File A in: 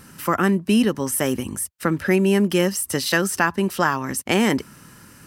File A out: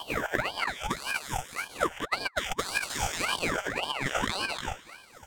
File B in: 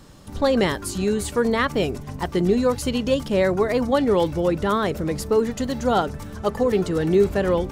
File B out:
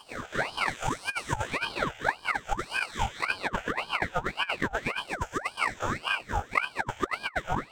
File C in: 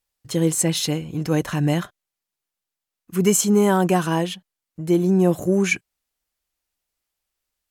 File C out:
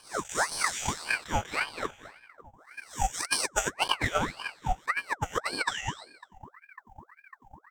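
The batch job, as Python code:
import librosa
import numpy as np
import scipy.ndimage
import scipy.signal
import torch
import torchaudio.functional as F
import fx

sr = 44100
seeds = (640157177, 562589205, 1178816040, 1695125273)

p1 = fx.spec_blur(x, sr, span_ms=502.0)
p2 = fx.ripple_eq(p1, sr, per_octave=0.73, db=17)
p3 = fx.filter_lfo_highpass(p2, sr, shape='sine', hz=4.2, low_hz=430.0, high_hz=1700.0, q=1.9)
p4 = fx.over_compress(p3, sr, threshold_db=-24.0, ratio=-0.5)
p5 = p4 + fx.echo_bbd(p4, sr, ms=550, stages=2048, feedback_pct=82, wet_db=-19.5, dry=0)
p6 = fx.transient(p5, sr, attack_db=10, sustain_db=-9)
p7 = fx.ring_lfo(p6, sr, carrier_hz=1200.0, swing_pct=70, hz=1.8)
y = F.gain(torch.from_numpy(p7), -4.5).numpy()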